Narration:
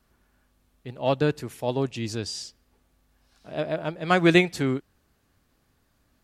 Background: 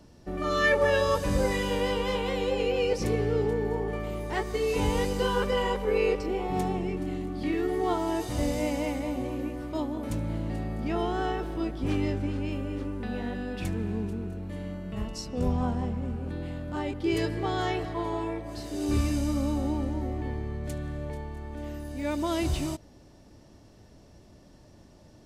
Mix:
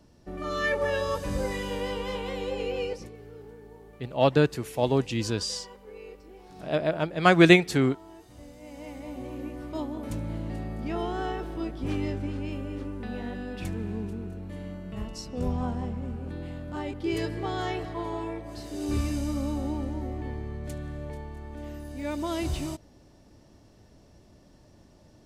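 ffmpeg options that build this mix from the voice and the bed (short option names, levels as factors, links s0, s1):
-filter_complex "[0:a]adelay=3150,volume=1.26[s0];[1:a]volume=4.73,afade=t=out:st=2.82:d=0.28:silence=0.16788,afade=t=in:st=8.6:d=1.07:silence=0.133352[s1];[s0][s1]amix=inputs=2:normalize=0"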